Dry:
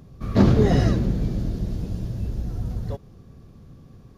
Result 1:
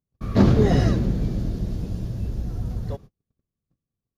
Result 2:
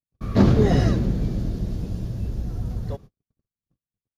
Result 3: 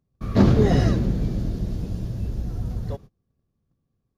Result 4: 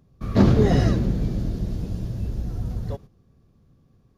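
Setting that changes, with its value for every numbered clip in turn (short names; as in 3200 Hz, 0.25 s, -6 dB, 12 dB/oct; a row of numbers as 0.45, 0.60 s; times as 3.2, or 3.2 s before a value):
gate, range: -40, -57, -28, -12 dB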